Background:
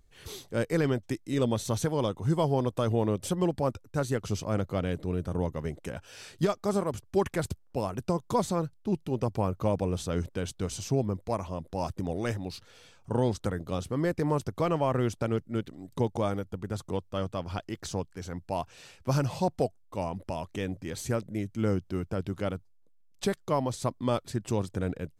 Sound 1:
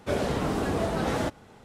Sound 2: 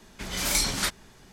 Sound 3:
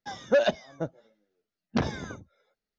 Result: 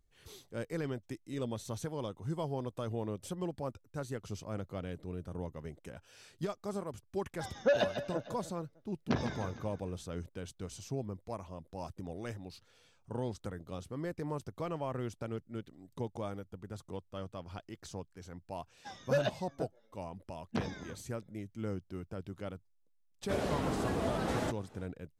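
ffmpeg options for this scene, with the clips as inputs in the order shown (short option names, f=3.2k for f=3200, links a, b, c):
-filter_complex "[3:a]asplit=2[a][b];[0:a]volume=-10.5dB[c];[a]aecho=1:1:151|302|453|604|755:0.335|0.164|0.0804|0.0394|0.0193,atrim=end=2.78,asetpts=PTS-STARTPTS,volume=-6dB,afade=t=in:d=0.004:c=hsin,afade=t=out:st=2.776:d=0.004:c=hsin,adelay=7340[d];[b]atrim=end=2.78,asetpts=PTS-STARTPTS,volume=-9dB,afade=t=in:d=0.004:c=hsin,afade=t=out:st=2.776:d=0.004:c=hsin,adelay=18790[e];[1:a]atrim=end=1.64,asetpts=PTS-STARTPTS,volume=-6.5dB,afade=t=in:d=0.004:c=hsin,afade=t=out:st=1.636:d=0.004:c=hsin,adelay=23220[f];[c][d][e][f]amix=inputs=4:normalize=0"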